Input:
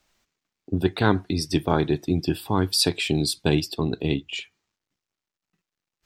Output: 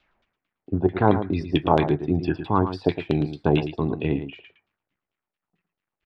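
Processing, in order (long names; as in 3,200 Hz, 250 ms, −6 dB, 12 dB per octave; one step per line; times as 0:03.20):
high-shelf EQ 6,800 Hz −9.5 dB
auto-filter low-pass saw down 4.5 Hz 570–3,400 Hz
single-tap delay 111 ms −10.5 dB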